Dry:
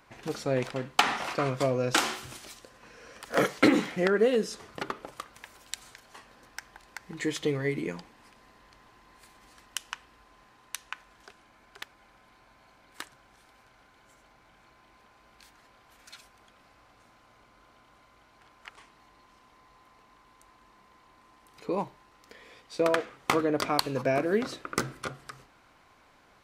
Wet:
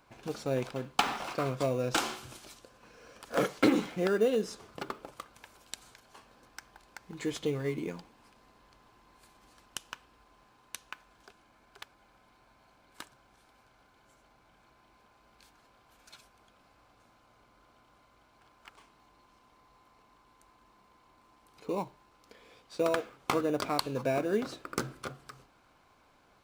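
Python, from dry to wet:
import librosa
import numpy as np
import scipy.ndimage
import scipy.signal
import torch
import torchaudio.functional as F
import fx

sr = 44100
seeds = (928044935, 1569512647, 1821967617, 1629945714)

p1 = fx.notch(x, sr, hz=1900.0, q=7.5)
p2 = fx.sample_hold(p1, sr, seeds[0], rate_hz=3200.0, jitter_pct=0)
p3 = p1 + F.gain(torch.from_numpy(p2), -11.5).numpy()
y = F.gain(torch.from_numpy(p3), -5.0).numpy()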